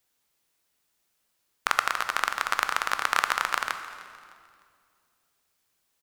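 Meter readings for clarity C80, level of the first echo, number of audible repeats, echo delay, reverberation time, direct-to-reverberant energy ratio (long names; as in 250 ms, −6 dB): 10.5 dB, −20.0 dB, 2, 304 ms, 2.2 s, 8.0 dB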